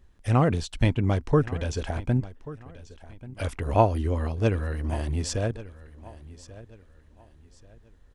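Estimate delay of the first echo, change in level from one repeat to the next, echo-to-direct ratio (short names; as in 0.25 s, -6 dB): 1.136 s, -10.0 dB, -17.5 dB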